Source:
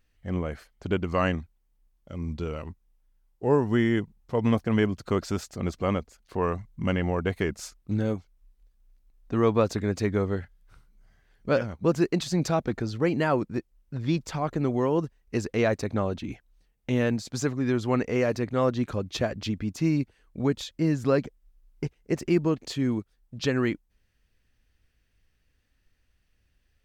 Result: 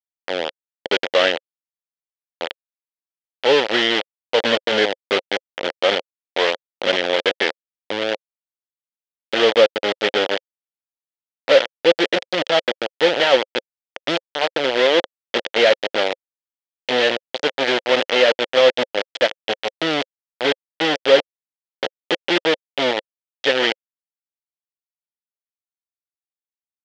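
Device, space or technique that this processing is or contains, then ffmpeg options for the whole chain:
hand-held game console: -af "acrusher=bits=3:mix=0:aa=0.000001,highpass=460,equalizer=frequency=530:width_type=q:width=4:gain=8,equalizer=frequency=1100:width_type=q:width=4:gain=-8,equalizer=frequency=1900:width_type=q:width=4:gain=3,equalizer=frequency=3200:width_type=q:width=4:gain=9,lowpass=frequency=4800:width=0.5412,lowpass=frequency=4800:width=1.3066,volume=7dB"

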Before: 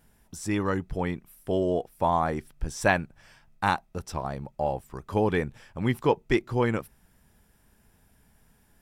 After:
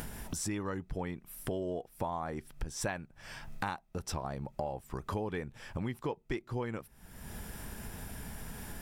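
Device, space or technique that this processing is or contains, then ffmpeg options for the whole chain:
upward and downward compression: -af "acompressor=mode=upward:threshold=-29dB:ratio=2.5,acompressor=threshold=-35dB:ratio=6,volume=1.5dB"

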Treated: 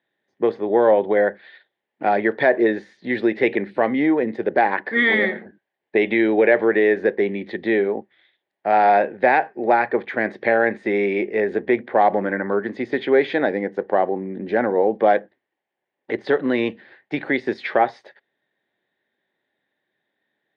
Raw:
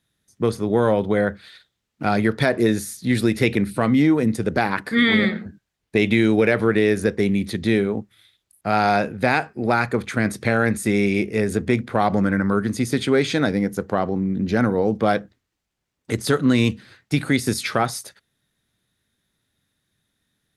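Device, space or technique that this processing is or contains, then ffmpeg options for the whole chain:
phone earpiece: -af "highpass=340,equalizer=frequency=370:width_type=q:width=4:gain=6,equalizer=frequency=570:width_type=q:width=4:gain=6,equalizer=frequency=810:width_type=q:width=4:gain=7,equalizer=frequency=1300:width_type=q:width=4:gain=-9,equalizer=frequency=1800:width_type=q:width=4:gain=7,equalizer=frequency=2600:width_type=q:width=4:gain=-4,lowpass=frequency=3000:width=0.5412,lowpass=frequency=3000:width=1.3066"

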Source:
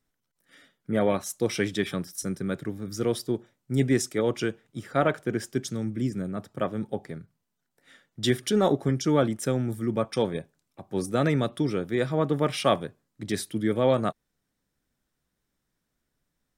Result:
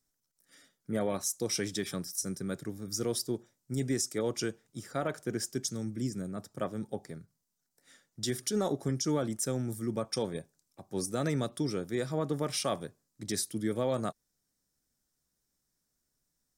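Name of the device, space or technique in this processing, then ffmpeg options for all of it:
over-bright horn tweeter: -af "highshelf=frequency=4100:width_type=q:width=1.5:gain=9,alimiter=limit=-15dB:level=0:latency=1:release=95,volume=-6dB"

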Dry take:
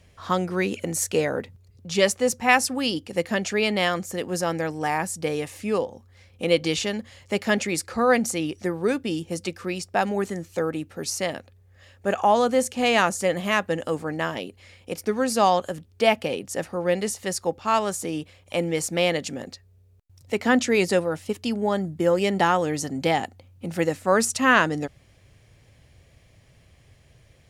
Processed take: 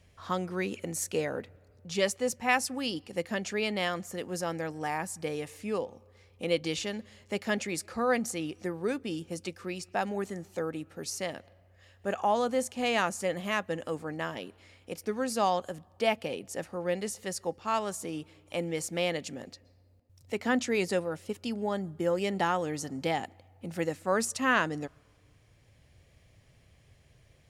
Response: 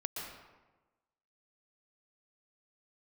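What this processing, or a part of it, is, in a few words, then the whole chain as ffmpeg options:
ducked reverb: -filter_complex "[0:a]asplit=3[link_01][link_02][link_03];[1:a]atrim=start_sample=2205[link_04];[link_02][link_04]afir=irnorm=-1:irlink=0[link_05];[link_03]apad=whole_len=1212309[link_06];[link_05][link_06]sidechaincompress=threshold=-39dB:ratio=16:attack=11:release=744,volume=-8.5dB[link_07];[link_01][link_07]amix=inputs=2:normalize=0,volume=-8dB"

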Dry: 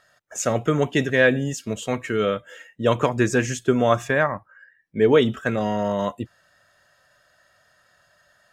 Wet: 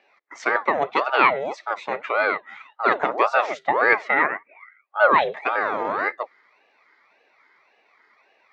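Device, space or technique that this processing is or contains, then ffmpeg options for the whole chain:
voice changer toy: -af "aeval=exprs='val(0)*sin(2*PI*670*n/s+670*0.6/1.8*sin(2*PI*1.8*n/s))':channel_layout=same,highpass=410,equalizer=frequency=420:width_type=q:width=4:gain=3,equalizer=frequency=610:width_type=q:width=4:gain=4,equalizer=frequency=1200:width_type=q:width=4:gain=3,equalizer=frequency=2000:width_type=q:width=4:gain=9,equalizer=frequency=3000:width_type=q:width=4:gain=-6,lowpass=frequency=4200:width=0.5412,lowpass=frequency=4200:width=1.3066,volume=1.5dB"

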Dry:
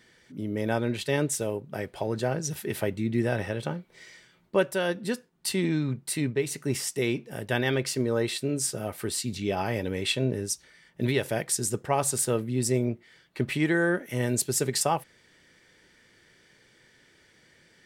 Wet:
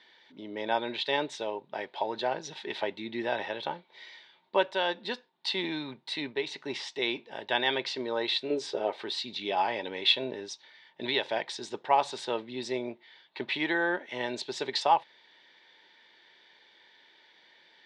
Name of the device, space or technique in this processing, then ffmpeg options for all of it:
phone earpiece: -filter_complex "[0:a]asettb=1/sr,asplit=3[link_01][link_02][link_03];[link_01]atrim=end=8.504[link_04];[link_02]atrim=start=8.5:end=9.02,asetpts=PTS-STARTPTS,afade=type=in:duration=0.004:curve=qsin,afade=type=out:start_time=0.516:duration=0.004:curve=qsin,equalizer=frequency=430:width_type=o:width=0.96:gain=12[link_05];[link_03]atrim=start=9.016[link_06];[link_04][link_05]acrossfade=duration=0.004:curve1=hsin:curve2=qsin[link_07];[link_07][link_06]acrossfade=duration=0.004:curve1=qsin:curve2=hsin,highpass=450,equalizer=frequency=480:width_type=q:width=4:gain=-4,equalizer=frequency=910:width_type=q:width=4:gain=10,equalizer=frequency=1300:width_type=q:width=4:gain=-6,equalizer=frequency=3700:width_type=q:width=4:gain=10,lowpass=frequency=4400:width=0.5412,lowpass=frequency=4400:width=1.3066"

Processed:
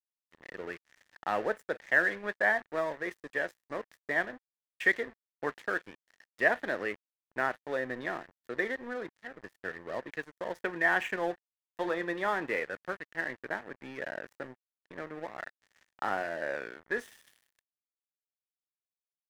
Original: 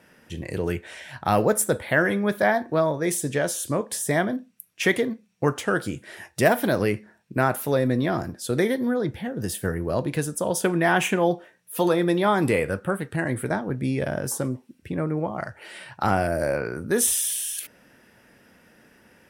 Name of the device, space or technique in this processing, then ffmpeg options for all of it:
pocket radio on a weak battery: -af "highpass=360,lowpass=3200,aeval=exprs='sgn(val(0))*max(abs(val(0))-0.015,0)':channel_layout=same,equalizer=frequency=1800:width_type=o:width=0.33:gain=11.5,volume=-8.5dB"

